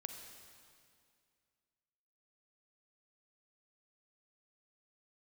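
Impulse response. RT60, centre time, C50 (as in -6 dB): 2.2 s, 51 ms, 5.0 dB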